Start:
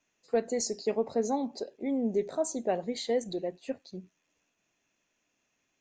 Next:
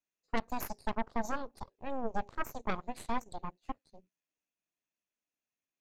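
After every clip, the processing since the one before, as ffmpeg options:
ffmpeg -i in.wav -af "aeval=exprs='0.168*(cos(1*acos(clip(val(0)/0.168,-1,1)))-cos(1*PI/2))+0.0668*(cos(3*acos(clip(val(0)/0.168,-1,1)))-cos(3*PI/2))+0.00188*(cos(5*acos(clip(val(0)/0.168,-1,1)))-cos(5*PI/2))+0.0422*(cos(6*acos(clip(val(0)/0.168,-1,1)))-cos(6*PI/2))+0.00841*(cos(8*acos(clip(val(0)/0.168,-1,1)))-cos(8*PI/2))':channel_layout=same,volume=-2dB" out.wav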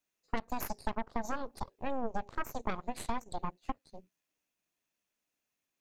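ffmpeg -i in.wav -af "acompressor=threshold=-36dB:ratio=6,volume=6.5dB" out.wav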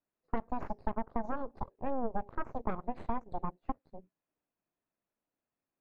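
ffmpeg -i in.wav -af "lowpass=1200,volume=1.5dB" out.wav

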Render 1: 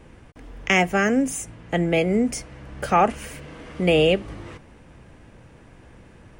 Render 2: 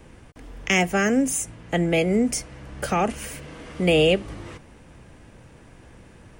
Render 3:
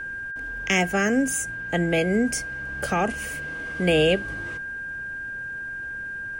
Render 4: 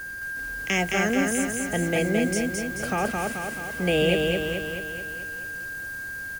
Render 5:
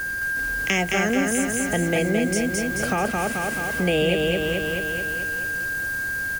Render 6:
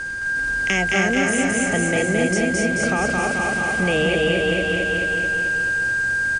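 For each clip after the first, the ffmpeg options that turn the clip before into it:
ffmpeg -i in.wav -filter_complex "[0:a]acrossover=split=470|2300[link_01][link_02][link_03];[link_02]alimiter=limit=-17dB:level=0:latency=1:release=152[link_04];[link_03]highshelf=frequency=4600:gain=6[link_05];[link_01][link_04][link_05]amix=inputs=3:normalize=0" out.wav
ffmpeg -i in.wav -af "aeval=exprs='val(0)+0.0355*sin(2*PI*1600*n/s)':channel_layout=same,volume=-1.5dB" out.wav
ffmpeg -i in.wav -filter_complex "[0:a]acrusher=bits=6:mix=0:aa=0.000001,asplit=2[link_01][link_02];[link_02]aecho=0:1:217|434|651|868|1085|1302|1519|1736:0.708|0.396|0.222|0.124|0.0696|0.039|0.0218|0.0122[link_03];[link_01][link_03]amix=inputs=2:normalize=0,volume=-3dB" out.wav
ffmpeg -i in.wav -af "acompressor=threshold=-31dB:ratio=2,volume=8dB" out.wav
ffmpeg -i in.wav -af "aecho=1:1:260|468|634.4|767.5|874:0.631|0.398|0.251|0.158|0.1" -ar 32000 -c:a mp2 -b:a 128k out.mp2

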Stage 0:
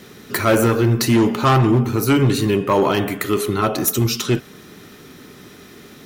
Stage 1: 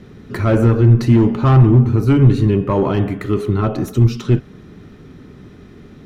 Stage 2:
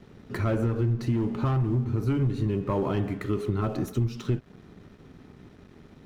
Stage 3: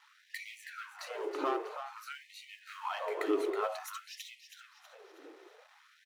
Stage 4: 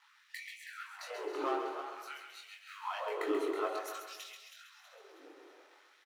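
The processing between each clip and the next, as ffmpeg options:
ffmpeg -i in.wav -af "aemphasis=mode=reproduction:type=riaa,volume=-4dB" out.wav
ffmpeg -i in.wav -af "acompressor=threshold=-15dB:ratio=6,aeval=exprs='sgn(val(0))*max(abs(val(0))-0.00473,0)':channel_layout=same,volume=-7dB" out.wav
ffmpeg -i in.wav -filter_complex "[0:a]asplit=6[link_01][link_02][link_03][link_04][link_05][link_06];[link_02]adelay=322,afreqshift=30,volume=-9dB[link_07];[link_03]adelay=644,afreqshift=60,volume=-16.7dB[link_08];[link_04]adelay=966,afreqshift=90,volume=-24.5dB[link_09];[link_05]adelay=1288,afreqshift=120,volume=-32.2dB[link_10];[link_06]adelay=1610,afreqshift=150,volume=-40dB[link_11];[link_01][link_07][link_08][link_09][link_10][link_11]amix=inputs=6:normalize=0,afftfilt=real='re*gte(b*sr/1024,290*pow(1900/290,0.5+0.5*sin(2*PI*0.52*pts/sr)))':imag='im*gte(b*sr/1024,290*pow(1900/290,0.5+0.5*sin(2*PI*0.52*pts/sr)))':win_size=1024:overlap=0.75" out.wav
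ffmpeg -i in.wav -af "flanger=delay=20:depth=4.2:speed=1,aecho=1:1:134|268|402|536|670|804:0.447|0.214|0.103|0.0494|0.0237|0.0114,volume=1dB" out.wav

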